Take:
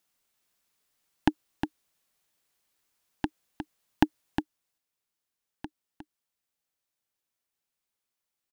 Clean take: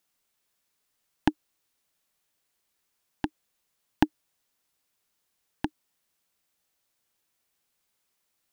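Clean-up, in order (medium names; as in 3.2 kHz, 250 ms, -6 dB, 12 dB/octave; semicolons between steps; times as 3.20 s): inverse comb 359 ms -7.5 dB; trim 0 dB, from 4.42 s +10 dB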